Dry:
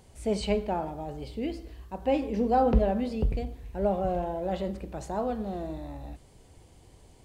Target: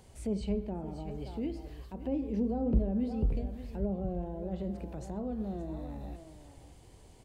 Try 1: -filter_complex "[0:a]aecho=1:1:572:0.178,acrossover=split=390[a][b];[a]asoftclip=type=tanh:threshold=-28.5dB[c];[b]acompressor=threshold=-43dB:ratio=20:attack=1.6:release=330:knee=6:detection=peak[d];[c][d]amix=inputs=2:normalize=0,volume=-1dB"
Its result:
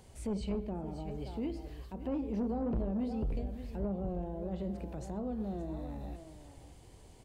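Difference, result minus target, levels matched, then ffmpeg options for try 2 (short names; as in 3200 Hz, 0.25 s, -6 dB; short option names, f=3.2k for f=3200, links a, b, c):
soft clip: distortion +10 dB
-filter_complex "[0:a]aecho=1:1:572:0.178,acrossover=split=390[a][b];[a]asoftclip=type=tanh:threshold=-16.5dB[c];[b]acompressor=threshold=-43dB:ratio=20:attack=1.6:release=330:knee=6:detection=peak[d];[c][d]amix=inputs=2:normalize=0,volume=-1dB"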